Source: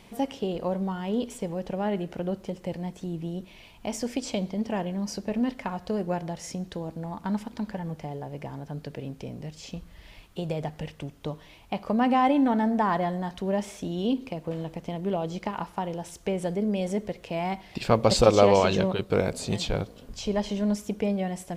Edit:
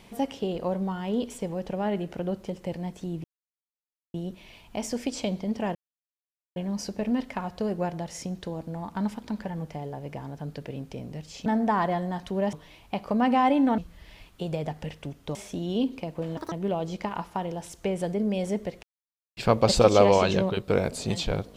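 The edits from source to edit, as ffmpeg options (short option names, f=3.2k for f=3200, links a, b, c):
-filter_complex "[0:a]asplit=11[a][b][c][d][e][f][g][h][i][j][k];[a]atrim=end=3.24,asetpts=PTS-STARTPTS,afade=t=out:st=3.236:d=0.004:c=hsin,apad=pad_dur=0.9[l];[b]atrim=start=3.24:end=4.85,asetpts=PTS-STARTPTS,afade=t=in:d=0.004:c=hsin,afade=t=out:st=1.606:d=0.004:c=hsin,apad=pad_dur=0.81[m];[c]atrim=start=4.85:end=9.752,asetpts=PTS-STARTPTS,afade=t=in:d=0.004:c=hsin[n];[d]atrim=start=12.568:end=13.642[o];[e]atrim=start=11.318:end=12.572[p];[f]atrim=start=9.748:end=11.322[q];[g]atrim=start=13.638:end=14.664[r];[h]atrim=start=14.66:end=14.94,asetpts=PTS-STARTPTS,asetrate=82908,aresample=44100,atrim=end_sample=6568,asetpts=PTS-STARTPTS[s];[i]atrim=start=14.936:end=17.25,asetpts=PTS-STARTPTS,afade=t=out:st=2.31:d=0.004:c=hsin[t];[j]atrim=start=17.25:end=17.79,asetpts=PTS-STARTPTS,volume=0[u];[k]atrim=start=17.79,asetpts=PTS-STARTPTS,afade=t=in:d=0.004:c=hsin[v];[l][m][n]concat=n=3:v=0:a=1[w];[w][o]acrossfade=d=0.004:c1=hsin:c2=hsin[x];[x][p]acrossfade=d=0.004:c1=hsin:c2=hsin[y];[y][q]acrossfade=d=0.004:c1=hsin:c2=hsin[z];[z][r]acrossfade=d=0.004:c1=hsin:c2=hsin[aa];[aa][s]acrossfade=d=0.004:c1=hsin:c2=hsin[ab];[t][u][v]concat=n=3:v=0:a=1[ac];[ab][ac]acrossfade=d=0.004:c1=hsin:c2=hsin"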